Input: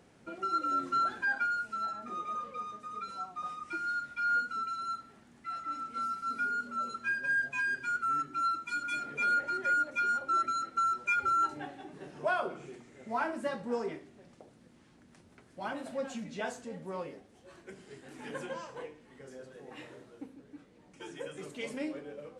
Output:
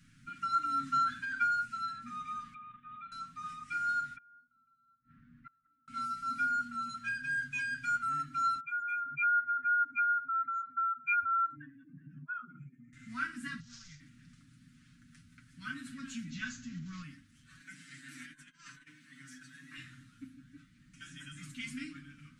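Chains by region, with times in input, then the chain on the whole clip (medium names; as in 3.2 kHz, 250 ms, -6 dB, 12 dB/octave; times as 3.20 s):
2.54–3.12 s: rippled Chebyshev low-pass 3.6 kHz, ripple 3 dB + level held to a coarse grid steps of 9 dB
4.16–5.88 s: low-pass 1.3 kHz + inverted gate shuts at -39 dBFS, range -29 dB
8.60–12.93 s: spectral contrast enhancement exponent 2 + static phaser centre 1.8 kHz, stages 4
13.60–14.00 s: CVSD coder 32 kbps + FFT filter 130 Hz 0 dB, 280 Hz -26 dB, 440 Hz -23 dB, 640 Hz -16 dB, 1.7 kHz -10 dB, 2.5 kHz -11 dB, 6.6 kHz +5 dB
16.30–17.03 s: block-companded coder 5-bit + careless resampling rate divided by 3×, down none, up filtered + bass shelf 170 Hz +6 dB
17.60–19.77 s: high-pass 280 Hz + compressor with a negative ratio -47 dBFS, ratio -0.5 + comb 6.7 ms, depth 67%
whole clip: elliptic band-stop 240–1400 Hz, stop band 40 dB; bass shelf 73 Hz +10.5 dB; comb 7.2 ms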